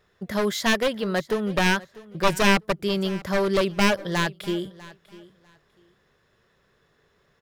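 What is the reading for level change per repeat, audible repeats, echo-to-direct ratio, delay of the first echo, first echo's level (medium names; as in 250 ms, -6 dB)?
-14.0 dB, 2, -20.0 dB, 647 ms, -20.0 dB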